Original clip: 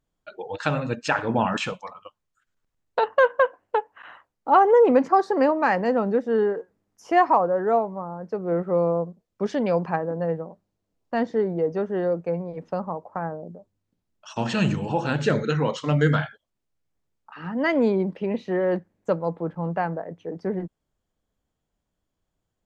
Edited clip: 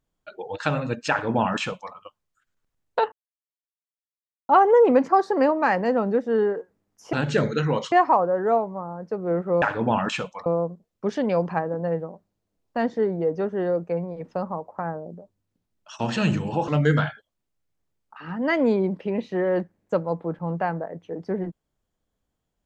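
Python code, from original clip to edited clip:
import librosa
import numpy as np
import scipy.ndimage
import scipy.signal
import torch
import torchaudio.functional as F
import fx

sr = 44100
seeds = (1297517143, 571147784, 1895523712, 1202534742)

y = fx.edit(x, sr, fx.duplicate(start_s=1.1, length_s=0.84, to_s=8.83),
    fx.silence(start_s=3.12, length_s=1.37),
    fx.move(start_s=15.05, length_s=0.79, to_s=7.13), tone=tone)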